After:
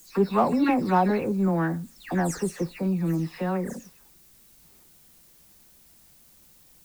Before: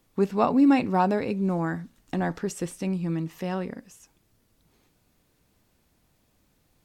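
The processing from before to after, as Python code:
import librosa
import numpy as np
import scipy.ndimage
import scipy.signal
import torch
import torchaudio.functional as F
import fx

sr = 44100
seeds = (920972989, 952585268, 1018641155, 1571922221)

p1 = fx.spec_delay(x, sr, highs='early', ms=252)
p2 = fx.peak_eq(p1, sr, hz=3100.0, db=-8.5, octaves=0.31)
p3 = fx.dmg_noise_colour(p2, sr, seeds[0], colour='blue', level_db=-60.0)
p4 = 10.0 ** (-26.0 / 20.0) * np.tanh(p3 / 10.0 ** (-26.0 / 20.0))
y = p3 + (p4 * 10.0 ** (-6.0 / 20.0))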